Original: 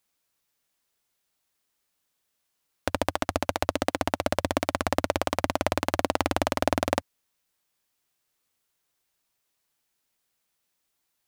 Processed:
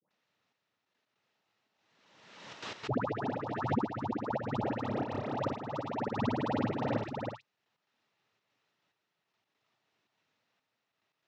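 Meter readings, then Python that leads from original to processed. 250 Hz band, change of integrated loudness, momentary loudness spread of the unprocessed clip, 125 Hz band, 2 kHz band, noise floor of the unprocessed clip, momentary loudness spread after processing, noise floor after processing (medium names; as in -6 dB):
-2.5 dB, -6.5 dB, 3 LU, -1.5 dB, -11.0 dB, -78 dBFS, 10 LU, -84 dBFS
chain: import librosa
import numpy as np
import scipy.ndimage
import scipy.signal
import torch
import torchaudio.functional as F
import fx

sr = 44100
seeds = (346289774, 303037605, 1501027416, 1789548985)

p1 = fx.hpss(x, sr, part='percussive', gain_db=-18)
p2 = fx.level_steps(p1, sr, step_db=12)
p3 = p1 + F.gain(torch.from_numpy(p2), 0.0).numpy()
p4 = 10.0 ** (-27.5 / 20.0) * np.tanh(p3 / 10.0 ** (-27.5 / 20.0))
p5 = fx.noise_vocoder(p4, sr, seeds[0], bands=12)
p6 = fx.dispersion(p5, sr, late='highs', ms=106.0, hz=1200.0)
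p7 = fx.step_gate(p6, sr, bpm=143, pattern='.xxxx....x.xxxxx', floor_db=-12.0, edge_ms=4.5)
p8 = fx.air_absorb(p7, sr, metres=240.0)
p9 = p8 + 10.0 ** (-4.0 / 20.0) * np.pad(p8, (int(323 * sr / 1000.0), 0))[:len(p8)]
p10 = fx.pre_swell(p9, sr, db_per_s=42.0)
y = F.gain(torch.from_numpy(p10), 6.0).numpy()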